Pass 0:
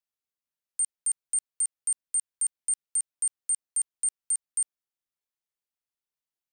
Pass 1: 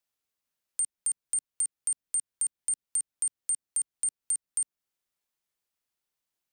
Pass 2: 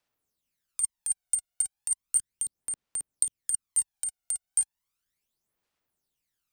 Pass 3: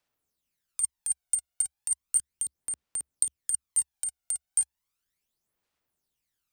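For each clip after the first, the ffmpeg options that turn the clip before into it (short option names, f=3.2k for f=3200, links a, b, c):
-filter_complex "[0:a]acrossover=split=350[a][b];[b]acompressor=threshold=-39dB:ratio=2[c];[a][c]amix=inputs=2:normalize=0,volume=6dB"
-af "aphaser=in_gain=1:out_gain=1:delay=1.4:decay=0.68:speed=0.35:type=sinusoidal"
-af "equalizer=f=69:t=o:w=0.29:g=4"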